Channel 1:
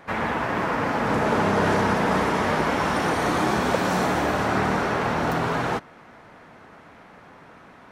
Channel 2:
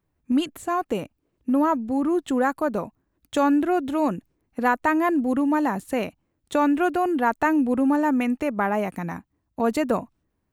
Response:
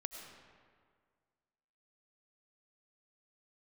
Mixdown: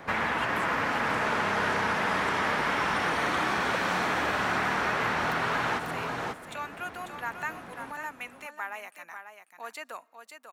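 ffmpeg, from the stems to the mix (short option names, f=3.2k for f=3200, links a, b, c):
-filter_complex "[0:a]volume=2.5dB,asplit=2[a][b];[b]volume=-8dB[c];[1:a]highpass=1.4k,volume=-5.5dB,asplit=3[d][e][f];[e]volume=-23.5dB[g];[f]volume=-8dB[h];[2:a]atrim=start_sample=2205[i];[g][i]afir=irnorm=-1:irlink=0[j];[c][h]amix=inputs=2:normalize=0,aecho=0:1:543:1[k];[a][d][j][k]amix=inputs=4:normalize=0,acrossover=split=430|1200|3700[l][m][n][o];[l]acompressor=threshold=-39dB:ratio=4[p];[m]acompressor=threshold=-36dB:ratio=4[q];[n]acompressor=threshold=-27dB:ratio=4[r];[o]acompressor=threshold=-48dB:ratio=4[s];[p][q][r][s]amix=inputs=4:normalize=0"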